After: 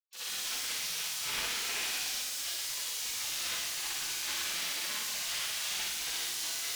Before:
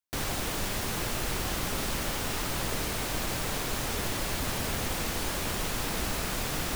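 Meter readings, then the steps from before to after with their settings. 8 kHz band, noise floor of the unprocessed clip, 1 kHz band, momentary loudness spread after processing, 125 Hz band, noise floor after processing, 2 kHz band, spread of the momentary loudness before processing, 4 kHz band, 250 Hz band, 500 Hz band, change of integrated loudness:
+1.0 dB, -33 dBFS, -10.0 dB, 2 LU, -26.0 dB, -37 dBFS, -2.5 dB, 0 LU, +2.0 dB, -21.5 dB, -16.5 dB, -1.5 dB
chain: LPF 1800 Hz 6 dB/oct; on a send: flutter echo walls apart 10.7 m, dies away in 1.2 s; on the sum: added harmonics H 5 -18 dB, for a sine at -18 dBFS; in parallel at -6.5 dB: hard clip -28.5 dBFS, distortion -12 dB; on the sum: spectral gate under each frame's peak -25 dB weak; Schroeder reverb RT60 1.2 s, DRR -10 dB; frequency shift -140 Hz; gain -5 dB

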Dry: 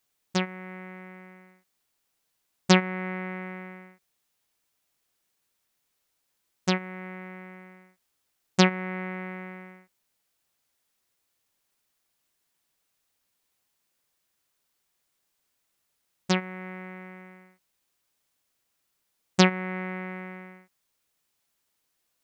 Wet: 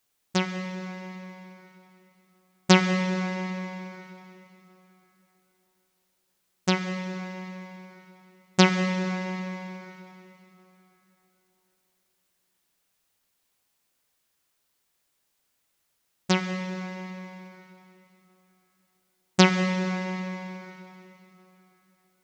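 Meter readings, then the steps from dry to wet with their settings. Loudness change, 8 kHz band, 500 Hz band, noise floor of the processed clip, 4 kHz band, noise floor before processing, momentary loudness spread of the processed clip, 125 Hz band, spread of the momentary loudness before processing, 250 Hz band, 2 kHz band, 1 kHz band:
+1.0 dB, +2.0 dB, +2.0 dB, -75 dBFS, +2.5 dB, -77 dBFS, 23 LU, +3.0 dB, 22 LU, +3.0 dB, +2.0 dB, +2.0 dB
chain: plate-style reverb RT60 3.6 s, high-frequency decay 0.85×, DRR 7 dB; gain +1.5 dB

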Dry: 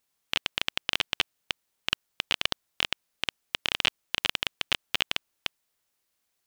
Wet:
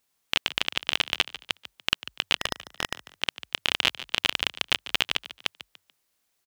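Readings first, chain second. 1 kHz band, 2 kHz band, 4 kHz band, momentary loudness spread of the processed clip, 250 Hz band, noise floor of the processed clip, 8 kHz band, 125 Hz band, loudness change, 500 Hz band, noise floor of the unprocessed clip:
+3.0 dB, +3.0 dB, +2.5 dB, 9 LU, +3.0 dB, -75 dBFS, +3.0 dB, +3.0 dB, +2.5 dB, +3.0 dB, -78 dBFS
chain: spectral gain 2.4–3.04, 1900–5100 Hz -8 dB; on a send: frequency-shifting echo 0.145 s, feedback 32%, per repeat +44 Hz, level -15 dB; on the sum: gain +3 dB

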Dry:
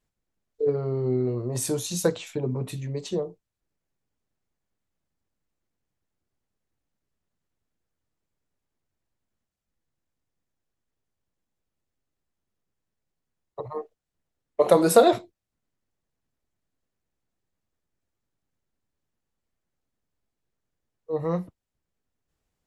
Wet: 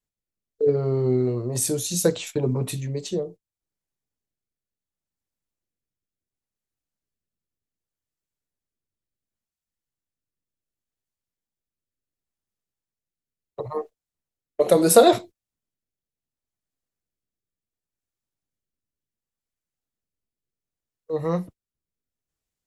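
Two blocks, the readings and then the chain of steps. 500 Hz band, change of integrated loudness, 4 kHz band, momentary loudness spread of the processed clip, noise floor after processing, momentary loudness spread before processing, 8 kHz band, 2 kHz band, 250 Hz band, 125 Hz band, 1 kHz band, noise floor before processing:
+2.5 dB, +2.5 dB, +4.5 dB, 18 LU, under -85 dBFS, 18 LU, +6.0 dB, +1.5 dB, +2.5 dB, +3.5 dB, +1.5 dB, -84 dBFS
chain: gate -41 dBFS, range -12 dB; rotary speaker horn 0.7 Hz; high shelf 4500 Hz +8.5 dB; gain +4.5 dB

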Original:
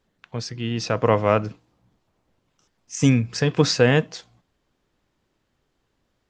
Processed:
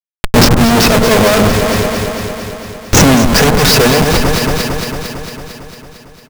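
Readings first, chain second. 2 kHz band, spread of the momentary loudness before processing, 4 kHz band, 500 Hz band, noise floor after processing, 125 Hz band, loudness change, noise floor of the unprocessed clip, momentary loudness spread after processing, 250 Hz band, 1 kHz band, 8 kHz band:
+15.0 dB, 17 LU, +16.5 dB, +11.0 dB, -41 dBFS, +10.5 dB, +11.0 dB, -73 dBFS, 17 LU, +13.5 dB, +14.5 dB, +18.5 dB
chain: LPF 3600 Hz 6 dB/oct; bell 74 Hz +12.5 dB 0.39 oct; comb 4.7 ms, depth 61%; in parallel at -9 dB: sample gate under -33 dBFS; on the sum: tube stage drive 19 dB, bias 0.7; Schmitt trigger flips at -37 dBFS; on a send: echo with dull and thin repeats by turns 0.113 s, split 1400 Hz, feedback 82%, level -6 dB; on the sum: maximiser +26 dB; gain -1 dB

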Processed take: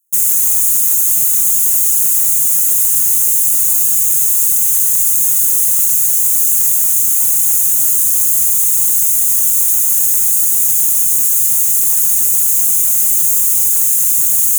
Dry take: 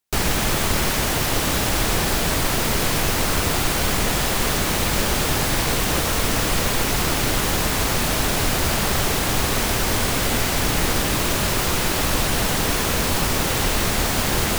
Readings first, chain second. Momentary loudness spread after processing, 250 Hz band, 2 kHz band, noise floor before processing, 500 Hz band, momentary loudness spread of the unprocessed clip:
0 LU, under -15 dB, under -15 dB, -22 dBFS, under -20 dB, 0 LU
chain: minimum comb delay 6 ms; Chebyshev band-stop 160–6500 Hz, order 5; tilt +4.5 dB/oct; added harmonics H 4 -28 dB, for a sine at -4.5 dBFS; gain +1.5 dB

